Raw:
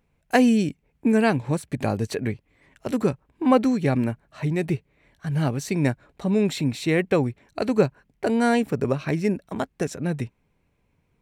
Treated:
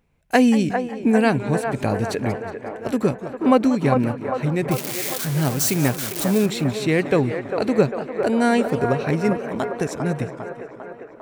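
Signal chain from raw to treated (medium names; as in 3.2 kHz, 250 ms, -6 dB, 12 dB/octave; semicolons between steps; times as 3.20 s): 4.71–6.46 s: zero-crossing glitches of -17.5 dBFS; feedback echo behind a band-pass 400 ms, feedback 64%, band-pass 850 Hz, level -4.5 dB; modulated delay 183 ms, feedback 51%, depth 203 cents, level -15 dB; trim +2 dB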